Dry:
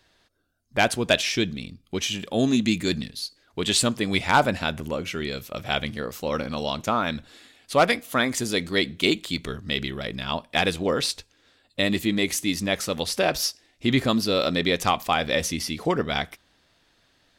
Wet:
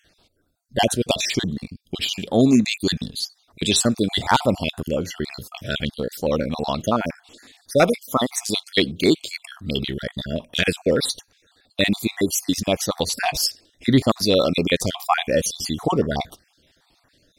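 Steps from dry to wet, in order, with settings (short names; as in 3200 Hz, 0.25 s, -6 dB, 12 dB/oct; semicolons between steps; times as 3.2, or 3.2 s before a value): random spectral dropouts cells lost 40%; 14.23–14.75 short-mantissa float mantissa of 8-bit; stepped notch 8.3 Hz 990–3100 Hz; gain +6.5 dB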